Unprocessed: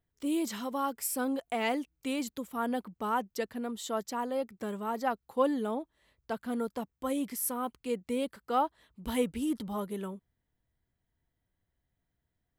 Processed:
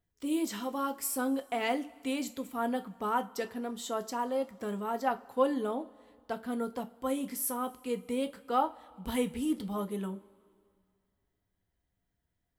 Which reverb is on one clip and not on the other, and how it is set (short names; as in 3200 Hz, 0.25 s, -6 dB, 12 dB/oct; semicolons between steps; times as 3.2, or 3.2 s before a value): two-slope reverb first 0.25 s, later 2.3 s, from -22 dB, DRR 7.5 dB; gain -1 dB